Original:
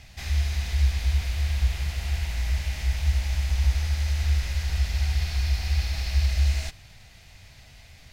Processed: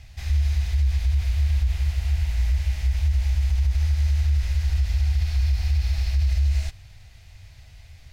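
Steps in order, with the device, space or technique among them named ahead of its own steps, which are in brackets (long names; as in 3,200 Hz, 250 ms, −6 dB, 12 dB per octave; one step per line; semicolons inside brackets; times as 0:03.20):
car stereo with a boomy subwoofer (low shelf with overshoot 130 Hz +7.5 dB, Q 1.5; brickwall limiter −11.5 dBFS, peak gain reduction 7.5 dB)
level −3.5 dB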